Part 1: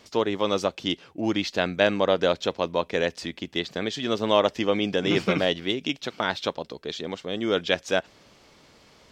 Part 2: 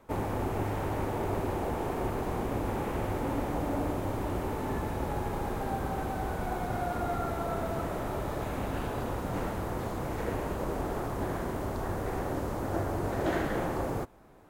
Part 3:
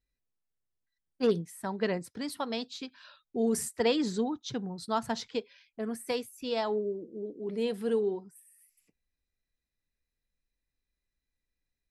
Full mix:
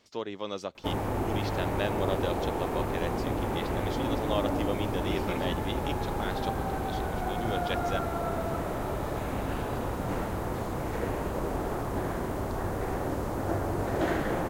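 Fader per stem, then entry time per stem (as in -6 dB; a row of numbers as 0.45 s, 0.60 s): -11.0 dB, +1.5 dB, mute; 0.00 s, 0.75 s, mute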